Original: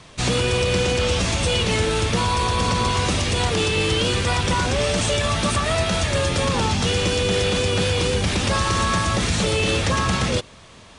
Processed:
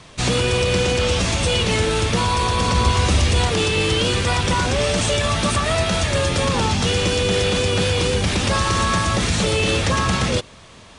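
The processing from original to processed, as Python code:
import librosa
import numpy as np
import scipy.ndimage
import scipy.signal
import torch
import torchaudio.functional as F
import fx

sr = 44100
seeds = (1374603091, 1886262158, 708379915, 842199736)

y = fx.peak_eq(x, sr, hz=69.0, db=13.5, octaves=0.39, at=(2.74, 3.45))
y = y * librosa.db_to_amplitude(1.5)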